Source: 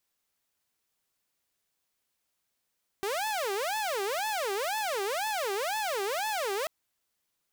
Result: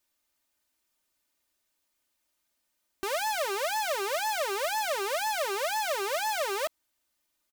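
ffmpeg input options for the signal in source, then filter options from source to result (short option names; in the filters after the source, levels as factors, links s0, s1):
-f lavfi -i "aevalsrc='0.0473*(2*mod((631.5*t-243.5/(2*PI*2)*sin(2*PI*2*t)),1)-1)':d=3.64:s=44100"
-af "aecho=1:1:3.3:0.7"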